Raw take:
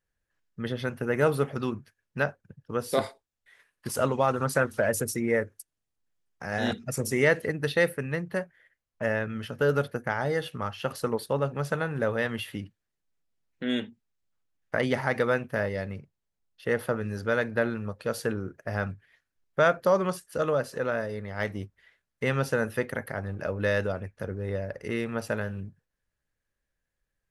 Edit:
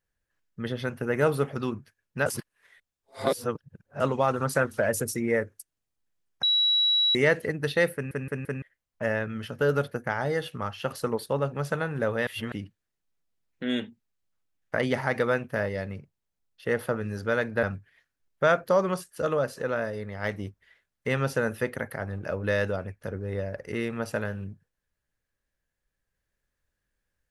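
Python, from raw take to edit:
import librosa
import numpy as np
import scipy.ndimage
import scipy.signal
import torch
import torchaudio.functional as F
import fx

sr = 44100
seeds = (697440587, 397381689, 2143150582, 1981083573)

y = fx.edit(x, sr, fx.reverse_span(start_s=2.26, length_s=1.74),
    fx.bleep(start_s=6.43, length_s=0.72, hz=3900.0, db=-19.5),
    fx.stutter_over(start_s=7.94, slice_s=0.17, count=4),
    fx.reverse_span(start_s=12.27, length_s=0.25),
    fx.cut(start_s=17.63, length_s=1.16), tone=tone)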